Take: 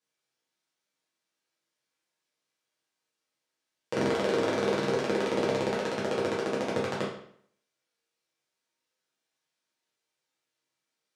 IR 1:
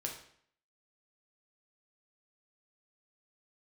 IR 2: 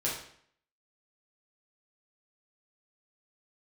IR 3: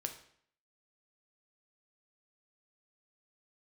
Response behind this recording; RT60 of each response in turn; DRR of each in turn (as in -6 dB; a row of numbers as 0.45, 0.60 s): 2; 0.60, 0.60, 0.60 s; 0.0, -6.5, 5.0 dB